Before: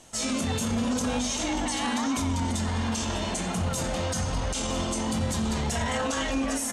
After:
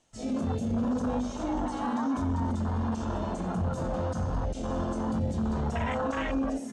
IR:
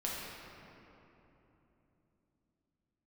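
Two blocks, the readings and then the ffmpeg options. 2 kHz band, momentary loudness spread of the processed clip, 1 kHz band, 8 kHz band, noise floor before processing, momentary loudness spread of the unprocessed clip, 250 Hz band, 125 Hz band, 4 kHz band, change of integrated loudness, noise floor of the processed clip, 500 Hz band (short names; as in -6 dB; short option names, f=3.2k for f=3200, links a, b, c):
-7.5 dB, 3 LU, -2.0 dB, -19.5 dB, -31 dBFS, 2 LU, -1.0 dB, -1.0 dB, -16.0 dB, -2.5 dB, -38 dBFS, -1.0 dB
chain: -af "asoftclip=type=tanh:threshold=-18.5dB,afwtdn=0.0282,lowpass=7.8k"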